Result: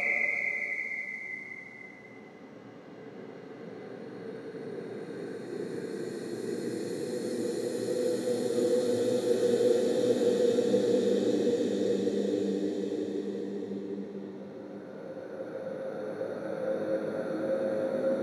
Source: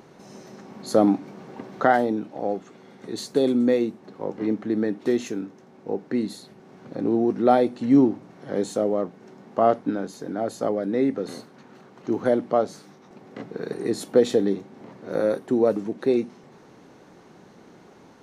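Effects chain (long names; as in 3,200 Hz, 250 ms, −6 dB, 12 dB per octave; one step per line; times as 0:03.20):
sound drawn into the spectrogram fall, 0:11.41–0:12.77, 2,000–7,000 Hz −14 dBFS
extreme stretch with random phases 7.6×, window 1.00 s, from 0:12.90
level −6.5 dB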